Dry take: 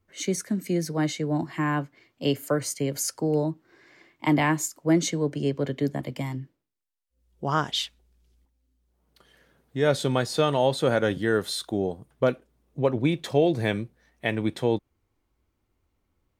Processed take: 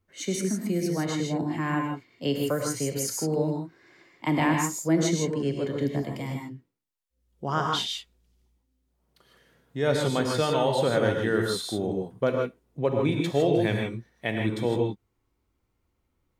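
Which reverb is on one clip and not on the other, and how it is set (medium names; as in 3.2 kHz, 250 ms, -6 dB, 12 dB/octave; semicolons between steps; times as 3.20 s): gated-style reverb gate 180 ms rising, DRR 1 dB; trim -3 dB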